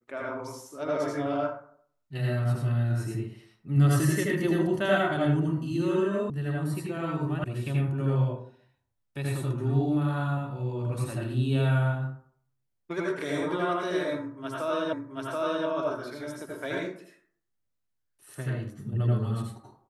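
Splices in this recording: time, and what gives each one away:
0:06.30: cut off before it has died away
0:07.44: cut off before it has died away
0:14.93: the same again, the last 0.73 s

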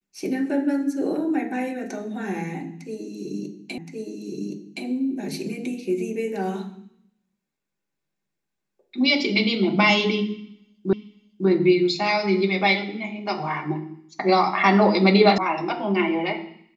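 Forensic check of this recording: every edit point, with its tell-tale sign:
0:03.78: the same again, the last 1.07 s
0:10.93: the same again, the last 0.55 s
0:15.38: cut off before it has died away

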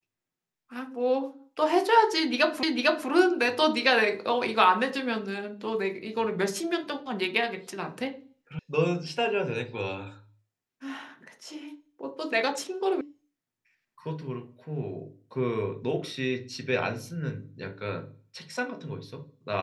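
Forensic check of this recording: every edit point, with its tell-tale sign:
0:02.63: the same again, the last 0.45 s
0:08.59: cut off before it has died away
0:13.01: cut off before it has died away

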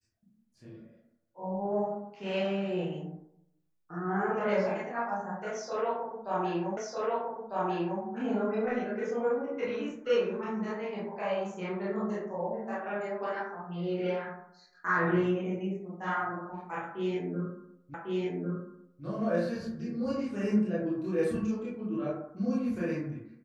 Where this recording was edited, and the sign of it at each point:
0:06.77: the same again, the last 1.25 s
0:17.94: the same again, the last 1.1 s

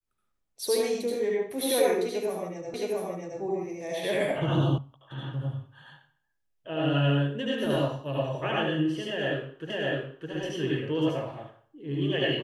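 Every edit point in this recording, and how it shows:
0:02.74: the same again, the last 0.67 s
0:04.78: cut off before it has died away
0:09.70: the same again, the last 0.61 s

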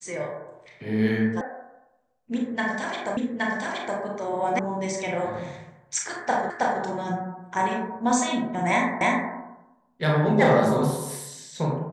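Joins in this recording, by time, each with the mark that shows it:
0:01.41: cut off before it has died away
0:03.17: the same again, the last 0.82 s
0:04.59: cut off before it has died away
0:06.50: the same again, the last 0.32 s
0:09.01: the same again, the last 0.31 s

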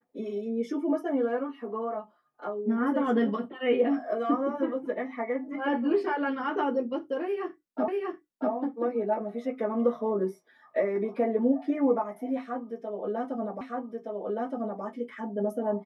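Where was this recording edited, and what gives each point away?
0:07.88: the same again, the last 0.64 s
0:13.61: the same again, the last 1.22 s

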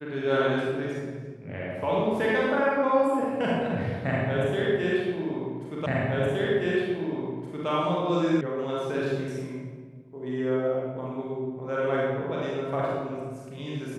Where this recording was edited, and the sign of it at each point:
0:05.86: the same again, the last 1.82 s
0:08.41: cut off before it has died away

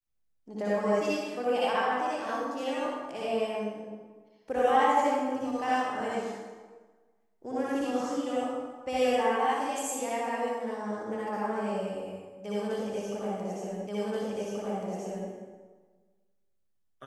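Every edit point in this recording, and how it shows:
0:13.87: the same again, the last 1.43 s

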